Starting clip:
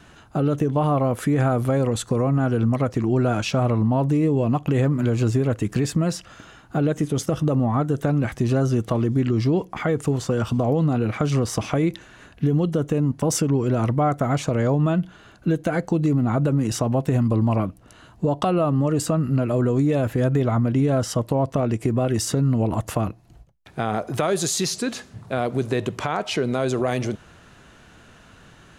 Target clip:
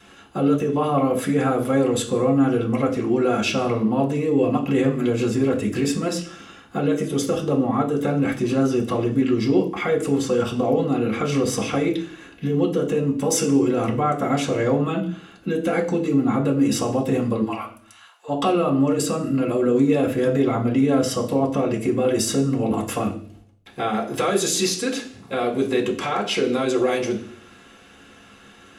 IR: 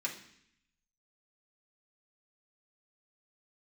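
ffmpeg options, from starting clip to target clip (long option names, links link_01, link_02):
-filter_complex "[0:a]asplit=3[link_01][link_02][link_03];[link_01]afade=type=out:start_time=17.41:duration=0.02[link_04];[link_02]highpass=frequency=800:width=0.5412,highpass=frequency=800:width=1.3066,afade=type=in:start_time=17.41:duration=0.02,afade=type=out:start_time=18.28:duration=0.02[link_05];[link_03]afade=type=in:start_time=18.28:duration=0.02[link_06];[link_04][link_05][link_06]amix=inputs=3:normalize=0[link_07];[1:a]atrim=start_sample=2205,asetrate=61740,aresample=44100[link_08];[link_07][link_08]afir=irnorm=-1:irlink=0,volume=4dB"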